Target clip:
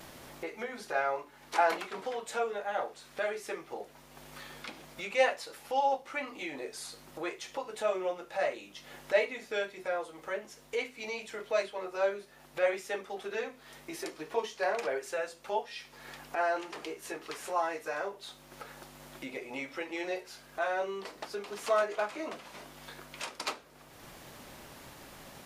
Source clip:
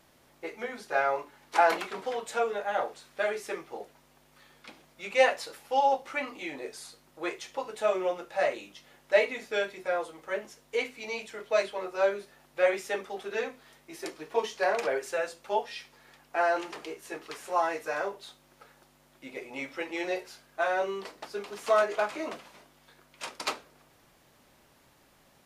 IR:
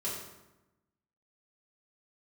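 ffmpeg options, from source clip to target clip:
-af "agate=range=-33dB:threshold=-58dB:ratio=3:detection=peak,acompressor=mode=upward:threshold=-29dB:ratio=2.5,volume=-4dB"

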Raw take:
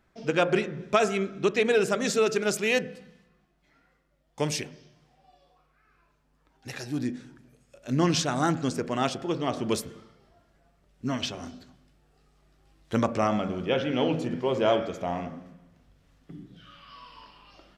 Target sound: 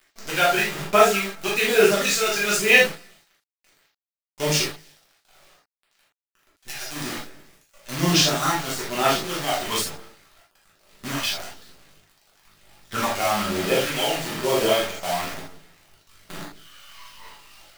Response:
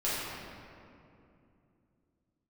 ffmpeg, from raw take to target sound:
-filter_complex "[0:a]aphaser=in_gain=1:out_gain=1:delay=1.4:decay=0.58:speed=1.1:type=sinusoidal,acrusher=bits=6:dc=4:mix=0:aa=0.000001,tiltshelf=f=830:g=-6[a];[1:a]atrim=start_sample=2205,atrim=end_sample=3969[b];[a][b]afir=irnorm=-1:irlink=0,volume=-3dB"

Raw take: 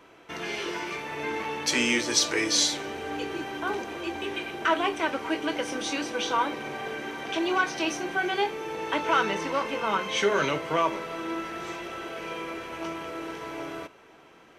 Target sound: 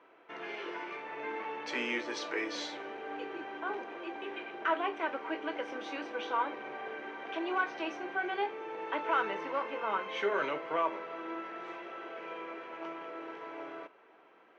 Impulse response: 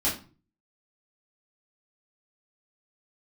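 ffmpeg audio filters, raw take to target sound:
-af "highpass=350,lowpass=2.2k,volume=-5.5dB"

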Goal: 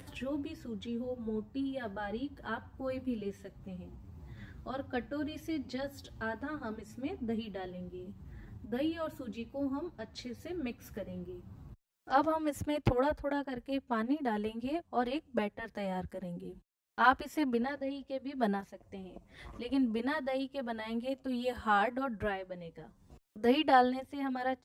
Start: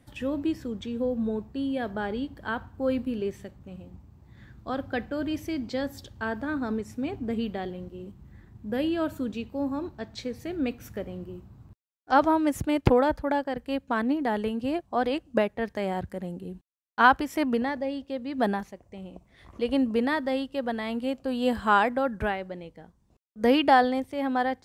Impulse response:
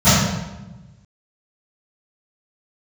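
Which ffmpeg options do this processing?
-filter_complex "[0:a]acompressor=mode=upward:threshold=-32dB:ratio=2.5,asplit=2[a][b];[b]adelay=7.2,afreqshift=-2.7[c];[a][c]amix=inputs=2:normalize=1,volume=-4dB"

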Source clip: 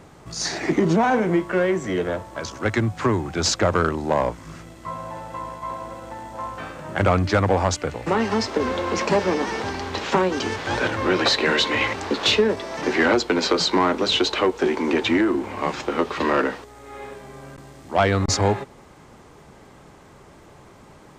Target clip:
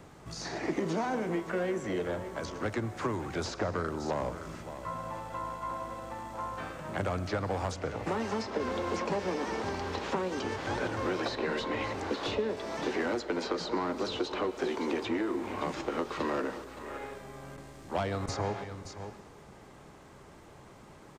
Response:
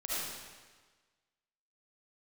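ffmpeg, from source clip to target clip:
-filter_complex "[0:a]aecho=1:1:567:0.126,asplit=2[a][b];[b]asetrate=58866,aresample=44100,atempo=0.749154,volume=-15dB[c];[a][c]amix=inputs=2:normalize=0,acrossover=split=430|1300|4600[d][e][f][g];[d]acompressor=threshold=-29dB:ratio=4[h];[e]acompressor=threshold=-29dB:ratio=4[i];[f]acompressor=threshold=-39dB:ratio=4[j];[g]acompressor=threshold=-46dB:ratio=4[k];[h][i][j][k]amix=inputs=4:normalize=0,asplit=2[l][m];[1:a]atrim=start_sample=2205,adelay=45[n];[m][n]afir=irnorm=-1:irlink=0,volume=-18.5dB[o];[l][o]amix=inputs=2:normalize=0,volume=-5.5dB"

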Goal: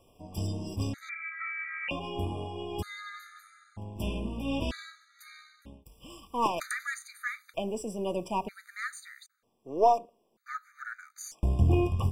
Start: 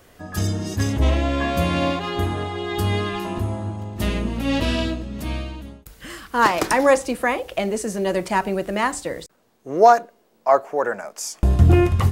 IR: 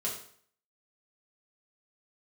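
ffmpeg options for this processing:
-filter_complex "[0:a]aeval=exprs='if(lt(val(0),0),0.708*val(0),val(0))':c=same,asettb=1/sr,asplit=3[a][b][c];[a]atrim=end=1.094[d];[b]atrim=start=1.09:end=1.91,asetpts=PTS-STARTPTS,afade=t=in:d=0.004:c=qsin,afade=t=out:st=0.816:d=0.004:c=qsin,lowpass=f=2.6k:t=q:w=0.5098,lowpass=f=2.6k:t=q:w=0.6013,lowpass=f=2.6k:t=q:w=0.9,lowpass=f=2.6k:t=q:w=2.563,afreqshift=-3000[e];[c]atrim=start=1.906[f];[d][e]acrossfade=d=0.004:c1=hsin:c2=qsin[g];[g][f]acrossfade=d=0.004:c1=qsin:c2=hsin,afftfilt=real='re*gt(sin(2*PI*0.53*pts/sr)*(1-2*mod(floor(b*sr/1024/1200),2)),0)':imag='im*gt(sin(2*PI*0.53*pts/sr)*(1-2*mod(floor(b*sr/1024/1200),2)),0)':win_size=1024:overlap=0.75,volume=-8.5dB"

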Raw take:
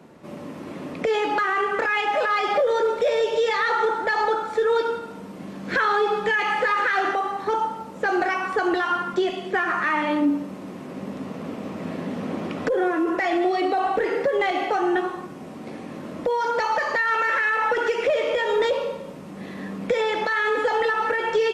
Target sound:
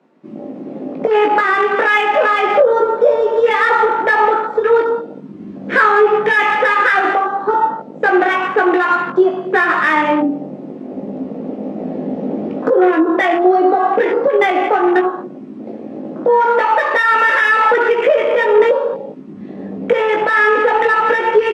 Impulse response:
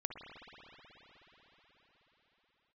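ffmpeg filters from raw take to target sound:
-filter_complex "[0:a]highpass=f=200:w=0.5412,highpass=f=200:w=1.3066,afwtdn=0.0355,adynamicsmooth=sensitivity=4:basefreq=5.5k,asplit=2[a][b];[b]adelay=19,volume=-5dB[c];[a][c]amix=inputs=2:normalize=0,volume=8.5dB"

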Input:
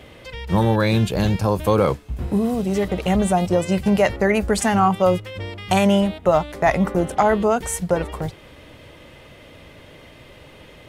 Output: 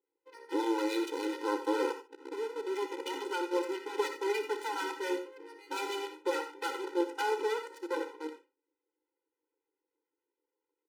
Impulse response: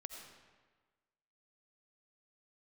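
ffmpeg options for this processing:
-filter_complex "[0:a]highpass=f=42:w=0.5412,highpass=f=42:w=1.3066,bandreject=f=123.6:t=h:w=4,bandreject=f=247.2:t=h:w=4,bandreject=f=370.8:t=h:w=4,bandreject=f=494.4:t=h:w=4,agate=range=-23dB:threshold=-39dB:ratio=16:detection=peak,highshelf=f=5.5k:g=7,acrossover=split=800[a][b];[b]aeval=exprs='0.0841*(abs(mod(val(0)/0.0841+3,4)-2)-1)':c=same[c];[a][c]amix=inputs=2:normalize=0,acrossover=split=630[d][e];[d]aeval=exprs='val(0)*(1-0.7/2+0.7/2*cos(2*PI*7*n/s))':c=same[f];[e]aeval=exprs='val(0)*(1-0.7/2-0.7/2*cos(2*PI*7*n/s))':c=same[g];[f][g]amix=inputs=2:normalize=0,asplit=2[h][i];[i]acrusher=bits=3:mix=0:aa=0.000001,volume=-7dB[j];[h][j]amix=inputs=2:normalize=0,adynamicsmooth=sensitivity=4:basefreq=960,aeval=exprs='max(val(0),0)':c=same,aecho=1:1:32|58:0.158|0.224[k];[1:a]atrim=start_sample=2205,atrim=end_sample=4410[l];[k][l]afir=irnorm=-1:irlink=0,afftfilt=real='re*eq(mod(floor(b*sr/1024/260),2),1)':imag='im*eq(mod(floor(b*sr/1024/260),2),1)':win_size=1024:overlap=0.75"

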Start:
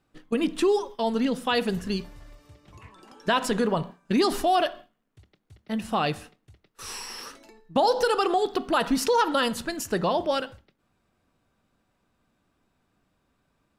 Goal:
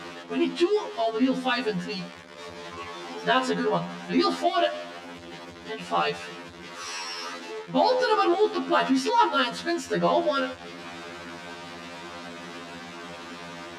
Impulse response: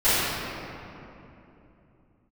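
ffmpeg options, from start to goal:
-af "aeval=exprs='val(0)+0.5*0.0282*sgn(val(0))':c=same,highpass=220,lowpass=4.8k,afftfilt=real='re*2*eq(mod(b,4),0)':imag='im*2*eq(mod(b,4),0)':win_size=2048:overlap=0.75,volume=2.5dB"

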